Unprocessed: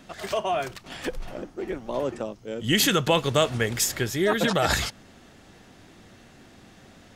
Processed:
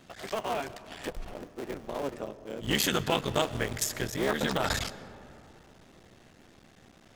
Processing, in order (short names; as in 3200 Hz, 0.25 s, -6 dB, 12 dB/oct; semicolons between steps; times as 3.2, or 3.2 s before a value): cycle switcher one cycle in 3, muted; on a send: reverb RT60 3.2 s, pre-delay 90 ms, DRR 16 dB; on the sum: gain -4.5 dB